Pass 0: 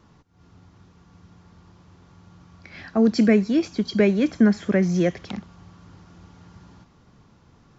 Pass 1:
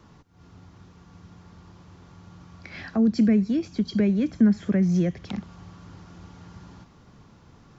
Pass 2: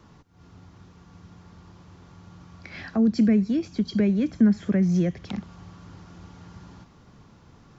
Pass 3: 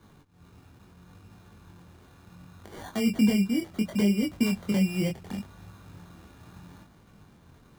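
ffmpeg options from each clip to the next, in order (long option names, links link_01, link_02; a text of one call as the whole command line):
ffmpeg -i in.wav -filter_complex "[0:a]acrossover=split=230[link_01][link_02];[link_02]acompressor=threshold=-38dB:ratio=2.5[link_03];[link_01][link_03]amix=inputs=2:normalize=0,volume=2.5dB" out.wav
ffmpeg -i in.wav -af anull out.wav
ffmpeg -i in.wav -af "acrusher=samples=17:mix=1:aa=0.000001,flanger=delay=19:depth=6.7:speed=0.71" out.wav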